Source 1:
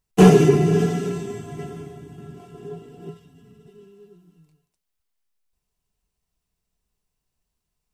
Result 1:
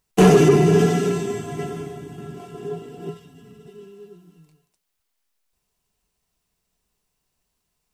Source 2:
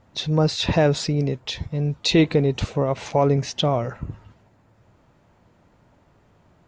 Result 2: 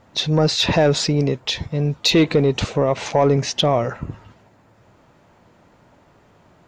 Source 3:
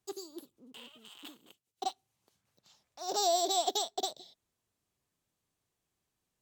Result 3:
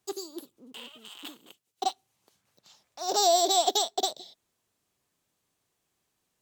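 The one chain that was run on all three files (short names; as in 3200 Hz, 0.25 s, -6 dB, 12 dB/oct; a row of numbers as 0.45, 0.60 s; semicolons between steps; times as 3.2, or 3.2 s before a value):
low shelf 140 Hz -8.5 dB; in parallel at +1.5 dB: limiter -13.5 dBFS; on the sum: soft clip -5 dBFS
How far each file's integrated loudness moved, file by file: -0.5, +3.0, +6.5 LU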